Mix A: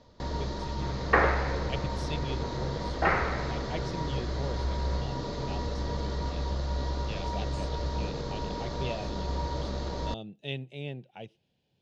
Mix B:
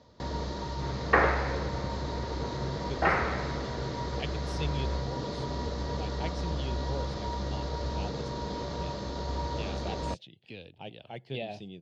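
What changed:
speech: entry +2.50 s
master: add high-pass filter 59 Hz

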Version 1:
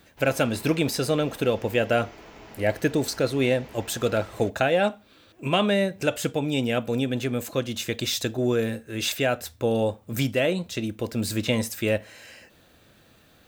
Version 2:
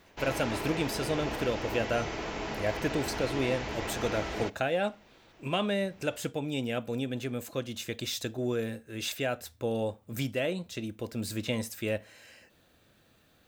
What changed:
speech −7.5 dB
background +10.5 dB

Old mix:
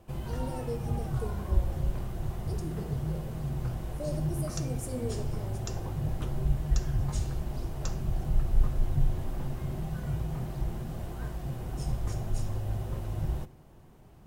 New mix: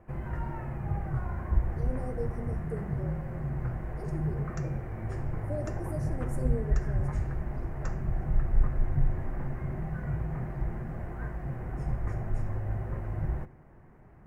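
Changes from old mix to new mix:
speech: entry +1.50 s
first sound: add high-shelf EQ 4,000 Hz −7.5 dB
master: add high shelf with overshoot 2,600 Hz −10 dB, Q 3

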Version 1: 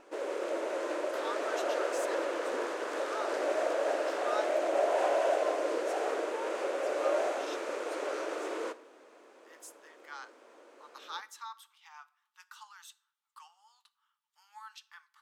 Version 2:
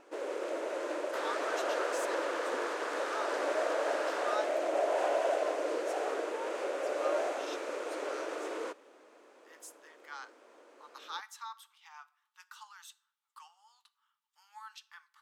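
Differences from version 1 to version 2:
first sound: send off
second sound +4.0 dB

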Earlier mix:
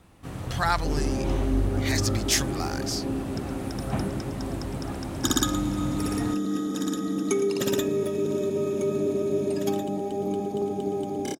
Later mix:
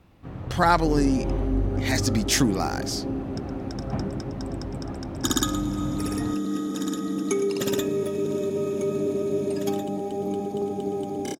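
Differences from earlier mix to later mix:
speech: add parametric band 300 Hz +14 dB 2.8 octaves
first sound: add head-to-tape spacing loss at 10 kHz 30 dB

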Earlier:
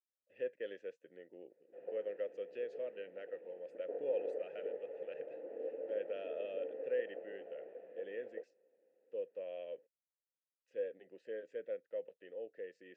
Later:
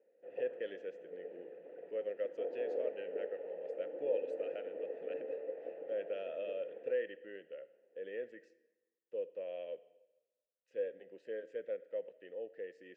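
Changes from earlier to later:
background: entry −1.50 s
reverb: on, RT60 1.1 s

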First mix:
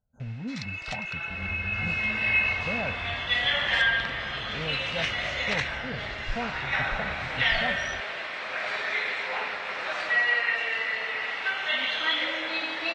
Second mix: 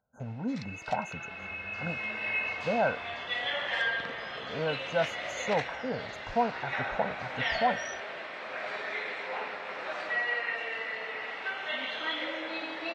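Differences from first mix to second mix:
speech +11.0 dB
first sound: add tilt shelving filter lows +9.5 dB, about 740 Hz
master: add high-pass filter 660 Hz 6 dB per octave

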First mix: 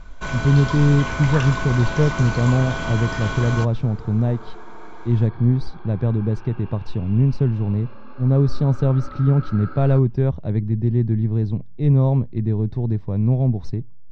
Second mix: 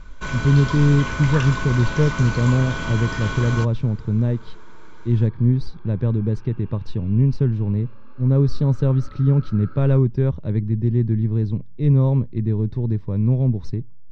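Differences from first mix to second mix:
second sound −7.5 dB
master: add parametric band 720 Hz −14.5 dB 0.24 octaves

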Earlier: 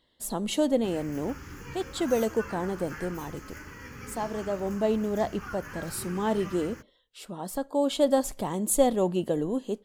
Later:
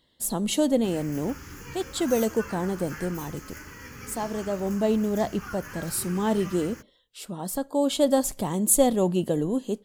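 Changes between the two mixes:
speech: add parametric band 140 Hz +5.5 dB 2.1 octaves
master: add high-shelf EQ 4,500 Hz +8 dB

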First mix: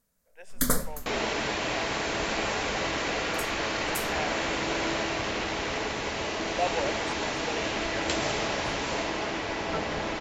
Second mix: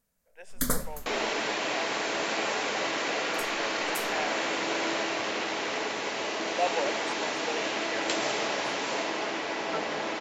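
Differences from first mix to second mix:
first sound −3.5 dB
second sound: add high-pass filter 260 Hz 12 dB per octave
reverb: on, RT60 2.5 s

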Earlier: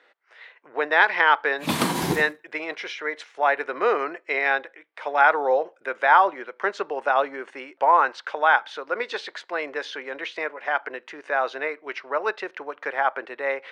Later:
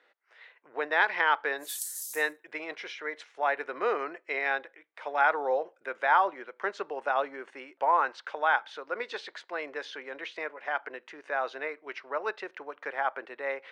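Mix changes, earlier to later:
speech −7.0 dB
background: add inverse Chebyshev high-pass filter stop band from 1,200 Hz, stop band 80 dB

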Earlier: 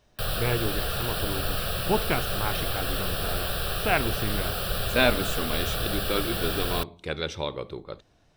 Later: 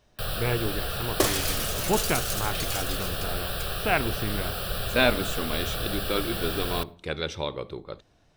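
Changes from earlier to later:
first sound: send −10.0 dB
second sound: unmuted

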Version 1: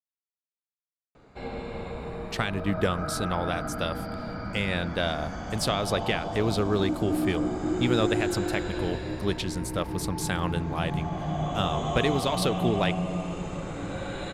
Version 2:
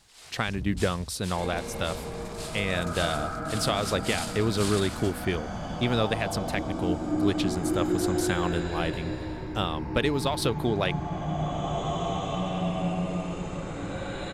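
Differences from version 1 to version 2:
speech: entry −2.00 s
first sound: unmuted

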